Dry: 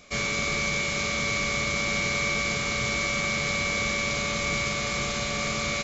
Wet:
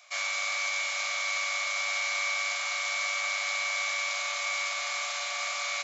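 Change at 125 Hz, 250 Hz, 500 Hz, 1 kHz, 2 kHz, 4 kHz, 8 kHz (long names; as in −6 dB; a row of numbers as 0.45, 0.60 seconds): below −40 dB, below −40 dB, −11.5 dB, −2.5 dB, −2.5 dB, −2.5 dB, can't be measured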